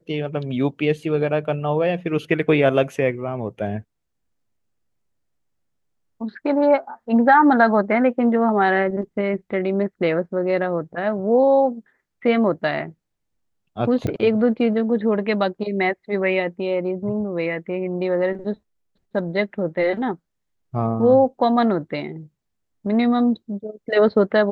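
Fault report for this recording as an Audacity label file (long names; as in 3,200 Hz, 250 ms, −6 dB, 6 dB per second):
14.070000	14.070000	click −15 dBFS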